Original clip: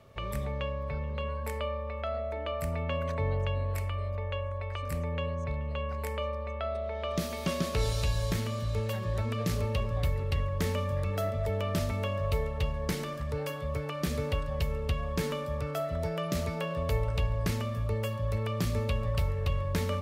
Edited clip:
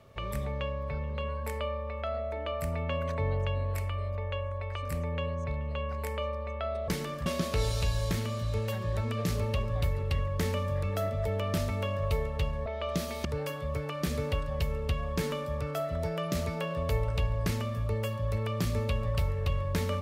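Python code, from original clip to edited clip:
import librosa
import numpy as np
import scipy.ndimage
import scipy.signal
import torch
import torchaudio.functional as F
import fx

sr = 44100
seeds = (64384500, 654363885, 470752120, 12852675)

y = fx.edit(x, sr, fx.swap(start_s=6.88, length_s=0.59, other_s=12.87, other_length_s=0.38), tone=tone)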